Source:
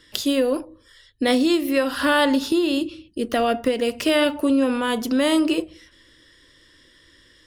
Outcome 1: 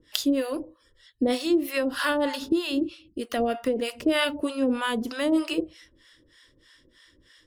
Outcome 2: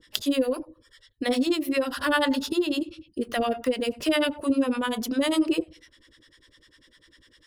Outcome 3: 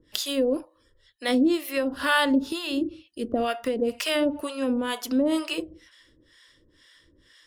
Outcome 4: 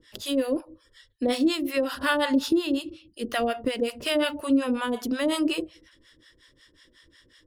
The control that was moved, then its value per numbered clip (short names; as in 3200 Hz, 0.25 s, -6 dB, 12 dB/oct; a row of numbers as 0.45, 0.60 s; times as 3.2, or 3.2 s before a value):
harmonic tremolo, rate: 3.2, 10, 2.1, 5.5 Hz